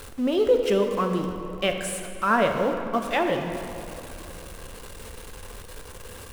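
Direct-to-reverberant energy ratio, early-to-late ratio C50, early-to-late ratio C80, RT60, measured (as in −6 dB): 4.0 dB, 5.0 dB, 6.5 dB, 3.0 s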